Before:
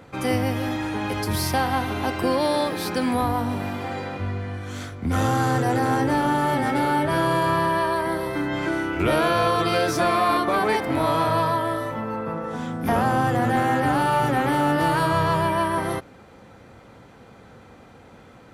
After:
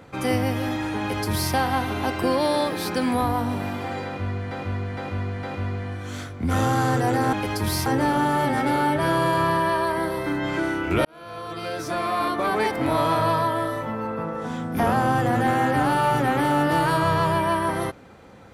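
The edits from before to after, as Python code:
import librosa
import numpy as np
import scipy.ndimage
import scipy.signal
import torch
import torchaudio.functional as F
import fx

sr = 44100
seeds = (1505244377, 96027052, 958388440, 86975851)

y = fx.edit(x, sr, fx.duplicate(start_s=1.0, length_s=0.53, to_s=5.95),
    fx.repeat(start_s=4.05, length_s=0.46, count=4),
    fx.fade_in_span(start_s=9.14, length_s=1.79), tone=tone)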